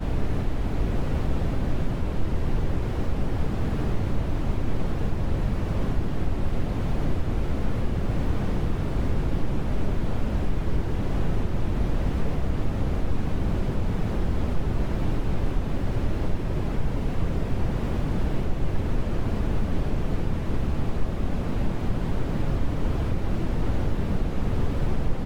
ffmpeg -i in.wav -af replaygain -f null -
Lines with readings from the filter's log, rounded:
track_gain = +15.2 dB
track_peak = 0.185